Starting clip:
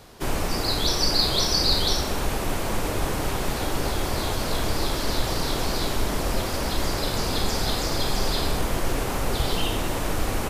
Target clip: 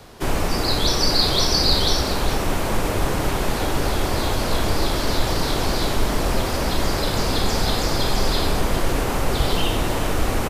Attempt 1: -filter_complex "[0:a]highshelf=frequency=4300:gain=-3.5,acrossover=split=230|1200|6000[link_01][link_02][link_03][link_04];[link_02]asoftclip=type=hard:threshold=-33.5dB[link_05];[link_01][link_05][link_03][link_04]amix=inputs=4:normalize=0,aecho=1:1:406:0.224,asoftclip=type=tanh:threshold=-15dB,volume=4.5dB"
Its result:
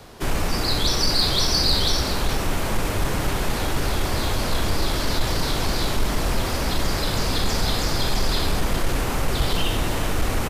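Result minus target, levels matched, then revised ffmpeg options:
hard clipping: distortion +16 dB; soft clipping: distortion +16 dB
-filter_complex "[0:a]highshelf=frequency=4300:gain=-3.5,acrossover=split=230|1200|6000[link_01][link_02][link_03][link_04];[link_02]asoftclip=type=hard:threshold=-25dB[link_05];[link_01][link_05][link_03][link_04]amix=inputs=4:normalize=0,aecho=1:1:406:0.224,asoftclip=type=tanh:threshold=-5.5dB,volume=4.5dB"

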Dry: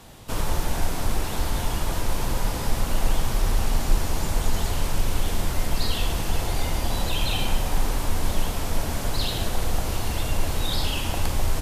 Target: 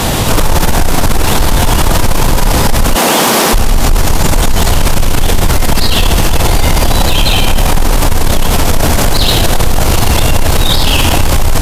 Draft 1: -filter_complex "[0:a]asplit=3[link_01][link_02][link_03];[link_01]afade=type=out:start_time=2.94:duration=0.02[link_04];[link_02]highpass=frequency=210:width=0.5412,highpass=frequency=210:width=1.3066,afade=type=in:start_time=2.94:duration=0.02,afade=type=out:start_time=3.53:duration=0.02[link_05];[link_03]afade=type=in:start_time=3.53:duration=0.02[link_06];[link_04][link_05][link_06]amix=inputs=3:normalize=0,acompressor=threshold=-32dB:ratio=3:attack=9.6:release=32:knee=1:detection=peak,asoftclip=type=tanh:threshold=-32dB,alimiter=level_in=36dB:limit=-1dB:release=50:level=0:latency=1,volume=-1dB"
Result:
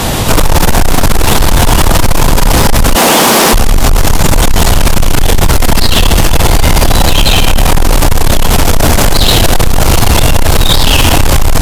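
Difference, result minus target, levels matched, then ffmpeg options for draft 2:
downward compressor: peak gain reduction −7 dB
-filter_complex "[0:a]asplit=3[link_01][link_02][link_03];[link_01]afade=type=out:start_time=2.94:duration=0.02[link_04];[link_02]highpass=frequency=210:width=0.5412,highpass=frequency=210:width=1.3066,afade=type=in:start_time=2.94:duration=0.02,afade=type=out:start_time=3.53:duration=0.02[link_05];[link_03]afade=type=in:start_time=3.53:duration=0.02[link_06];[link_04][link_05][link_06]amix=inputs=3:normalize=0,acompressor=threshold=-42.5dB:ratio=3:attack=9.6:release=32:knee=1:detection=peak,asoftclip=type=tanh:threshold=-32dB,alimiter=level_in=36dB:limit=-1dB:release=50:level=0:latency=1,volume=-1dB"

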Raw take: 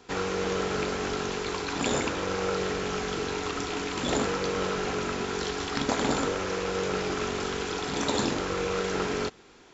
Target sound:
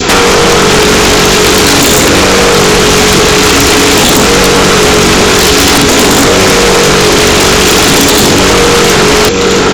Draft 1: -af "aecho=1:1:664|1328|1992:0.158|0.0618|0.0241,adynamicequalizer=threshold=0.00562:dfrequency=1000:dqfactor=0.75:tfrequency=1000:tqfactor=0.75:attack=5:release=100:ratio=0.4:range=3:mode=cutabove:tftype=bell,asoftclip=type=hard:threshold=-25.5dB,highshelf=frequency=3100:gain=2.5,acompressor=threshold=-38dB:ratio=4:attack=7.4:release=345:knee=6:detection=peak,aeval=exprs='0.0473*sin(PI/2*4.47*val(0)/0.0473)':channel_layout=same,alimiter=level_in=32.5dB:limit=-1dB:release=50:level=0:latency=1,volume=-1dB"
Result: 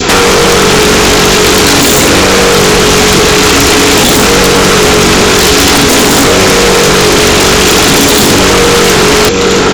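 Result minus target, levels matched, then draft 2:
hard clipping: distortion +34 dB
-af "aecho=1:1:664|1328|1992:0.158|0.0618|0.0241,adynamicequalizer=threshold=0.00562:dfrequency=1000:dqfactor=0.75:tfrequency=1000:tqfactor=0.75:attack=5:release=100:ratio=0.4:range=3:mode=cutabove:tftype=bell,asoftclip=type=hard:threshold=-15dB,highshelf=frequency=3100:gain=2.5,acompressor=threshold=-38dB:ratio=4:attack=7.4:release=345:knee=6:detection=peak,aeval=exprs='0.0473*sin(PI/2*4.47*val(0)/0.0473)':channel_layout=same,alimiter=level_in=32.5dB:limit=-1dB:release=50:level=0:latency=1,volume=-1dB"

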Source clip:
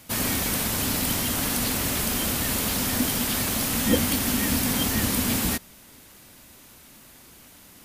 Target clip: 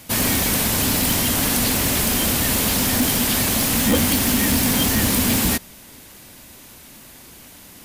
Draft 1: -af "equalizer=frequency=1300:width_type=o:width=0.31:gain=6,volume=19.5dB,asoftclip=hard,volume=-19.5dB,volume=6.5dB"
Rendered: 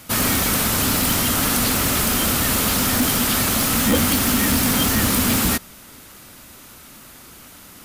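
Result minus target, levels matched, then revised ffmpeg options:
1,000 Hz band +2.5 dB
-af "equalizer=frequency=1300:width_type=o:width=0.31:gain=-3,volume=19.5dB,asoftclip=hard,volume=-19.5dB,volume=6.5dB"

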